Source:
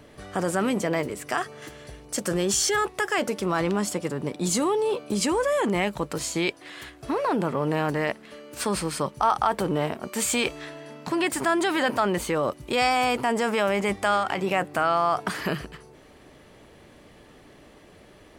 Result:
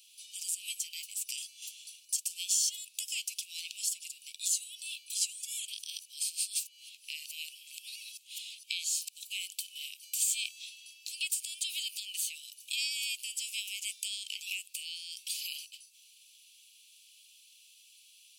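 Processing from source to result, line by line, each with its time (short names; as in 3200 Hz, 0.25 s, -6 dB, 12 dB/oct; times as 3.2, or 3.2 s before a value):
5.68–9.52 reverse
whole clip: steep high-pass 2500 Hz 96 dB/oct; high shelf 4100 Hz +11.5 dB; compressor 2:1, threshold -31 dBFS; gain -3 dB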